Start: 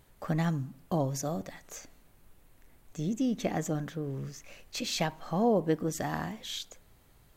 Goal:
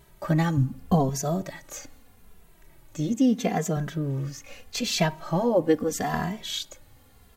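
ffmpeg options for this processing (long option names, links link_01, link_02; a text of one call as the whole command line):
ffmpeg -i in.wav -filter_complex "[0:a]asettb=1/sr,asplit=3[link_01][link_02][link_03];[link_01]atrim=end=0.574[link_04];[link_02]atrim=start=0.57:end=1.09,asetpts=PTS-STARTPTS,afade=type=in:duration=0.004:curve=qsin,afade=type=out:start_time=0.516:duration=0.004:curve=qsin,lowshelf=frequency=190:gain=10.5[link_05];[link_03]atrim=start=1.086[link_06];[link_04][link_05]acrossfade=duration=0.004:curve1=hsin:curve2=qsin[link_07];[link_07][link_06]acrossfade=duration=0.004:curve1=qsin:curve2=hsin,asettb=1/sr,asplit=3[link_08][link_09][link_10];[link_08]atrim=end=3.134[link_11];[link_09]atrim=start=3.13:end=3.77,asetpts=PTS-STARTPTS,afade=type=in:duration=0.004:curve=qsin,afade=type=out:start_time=0.636:duration=0.004:curve=qsin,highpass=120[link_12];[link_10]atrim=start=3.766[link_13];[link_11][link_12]acrossfade=duration=0.004:curve1=hsin:curve2=qsin[link_14];[link_14][link_13]acrossfade=duration=0.004:curve1=qsin:curve2=hsin,asplit=2[link_15][link_16];[link_16]adelay=2.6,afreqshift=-0.79[link_17];[link_15][link_17]amix=inputs=2:normalize=1,volume=9dB" out.wav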